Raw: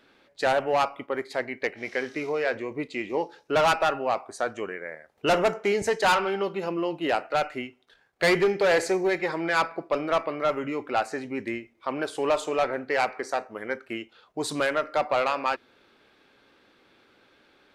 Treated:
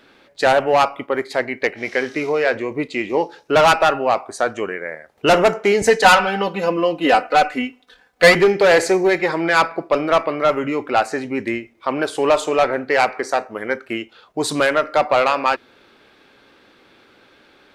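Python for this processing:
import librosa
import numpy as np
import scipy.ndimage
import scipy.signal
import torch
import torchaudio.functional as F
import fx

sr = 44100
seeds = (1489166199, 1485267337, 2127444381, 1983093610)

y = fx.comb(x, sr, ms=4.0, depth=0.81, at=(5.82, 8.35))
y = y * 10.0 ** (8.5 / 20.0)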